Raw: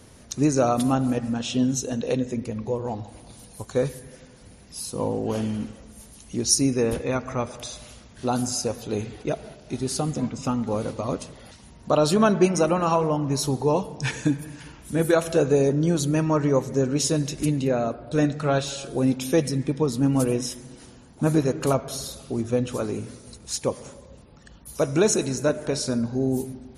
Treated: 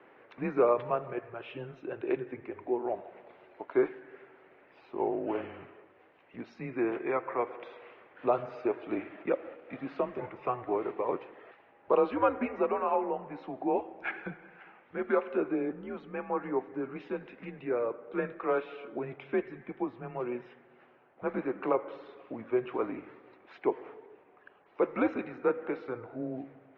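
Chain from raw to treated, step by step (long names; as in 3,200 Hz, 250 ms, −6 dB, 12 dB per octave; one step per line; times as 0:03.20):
speech leveller 2 s
single-sideband voice off tune −120 Hz 480–2,500 Hz
level −4 dB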